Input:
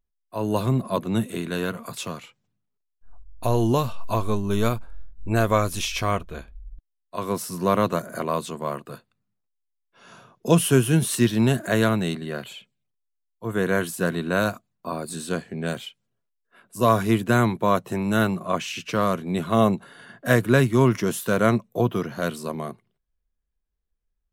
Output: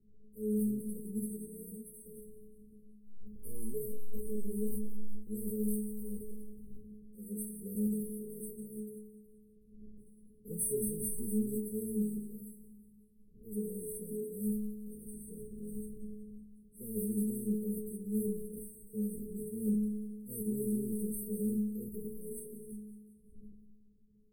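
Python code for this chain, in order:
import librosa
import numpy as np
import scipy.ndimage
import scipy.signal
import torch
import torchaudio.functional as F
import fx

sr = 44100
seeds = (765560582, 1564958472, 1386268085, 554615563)

p1 = fx.envelope_flatten(x, sr, power=0.6)
p2 = fx.dmg_wind(p1, sr, seeds[0], corner_hz=110.0, level_db=-39.0)
p3 = fx.transient(p2, sr, attack_db=0, sustain_db=12)
p4 = fx.stiff_resonator(p3, sr, f0_hz=210.0, decay_s=0.75, stiffness=0.008)
p5 = fx.sample_hold(p4, sr, seeds[1], rate_hz=11000.0, jitter_pct=0)
p6 = p4 + (p5 * librosa.db_to_amplitude(-11.0))
p7 = np.clip(p6, -10.0 ** (-26.0 / 20.0), 10.0 ** (-26.0 / 20.0))
p8 = fx.brickwall_bandstop(p7, sr, low_hz=530.0, high_hz=7900.0)
y = fx.echo_feedback(p8, sr, ms=185, feedback_pct=54, wet_db=-15)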